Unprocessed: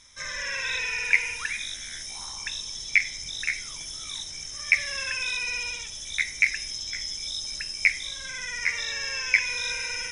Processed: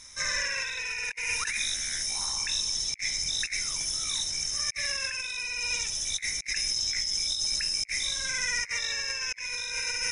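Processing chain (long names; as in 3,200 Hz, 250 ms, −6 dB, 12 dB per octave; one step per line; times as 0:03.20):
high-shelf EQ 4,700 Hz +6.5 dB
notch filter 3,300 Hz, Q 5.4
compressor whose output falls as the input rises −31 dBFS, ratio −0.5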